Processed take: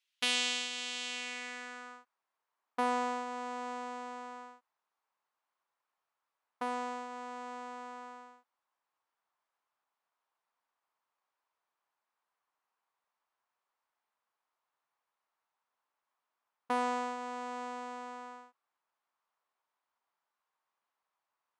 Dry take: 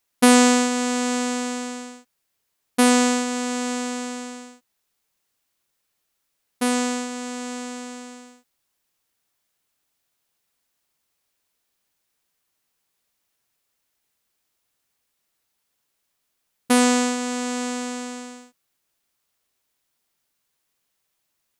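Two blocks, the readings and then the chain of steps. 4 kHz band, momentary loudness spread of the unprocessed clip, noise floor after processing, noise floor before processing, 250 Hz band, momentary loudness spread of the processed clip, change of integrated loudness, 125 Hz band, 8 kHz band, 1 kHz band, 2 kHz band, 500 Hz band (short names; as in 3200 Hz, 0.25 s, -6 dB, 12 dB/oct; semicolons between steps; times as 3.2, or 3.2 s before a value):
-9.0 dB, 20 LU, under -85 dBFS, -76 dBFS, -23.5 dB, 16 LU, -15.5 dB, n/a, -20.0 dB, -10.0 dB, -12.5 dB, -16.5 dB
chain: band-pass sweep 3100 Hz -> 1000 Hz, 1.04–2.16; in parallel at -0.5 dB: compressor, threshold -42 dBFS, peak gain reduction 19.5 dB; on the sum: dynamic EQ 1300 Hz, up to -5 dB, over -41 dBFS, Q 1.3; gain -3.5 dB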